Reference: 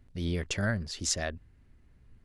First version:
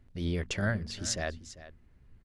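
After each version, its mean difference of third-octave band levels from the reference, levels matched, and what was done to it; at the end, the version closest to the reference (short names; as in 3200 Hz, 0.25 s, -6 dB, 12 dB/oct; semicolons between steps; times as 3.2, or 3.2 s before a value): 3.5 dB: high shelf 5200 Hz -5.5 dB; de-hum 46.71 Hz, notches 6; on a send: echo 0.396 s -16 dB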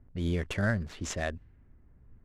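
2.5 dB: median filter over 9 samples; low-pass opened by the level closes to 1200 Hz, open at -31 dBFS; LPF 9800 Hz 12 dB/oct; gain +1.5 dB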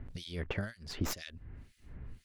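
9.5 dB: tracing distortion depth 0.14 ms; compressor 6:1, threshold -43 dBFS, peak gain reduction 17 dB; harmonic tremolo 2 Hz, depth 100%, crossover 2500 Hz; gain +14 dB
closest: second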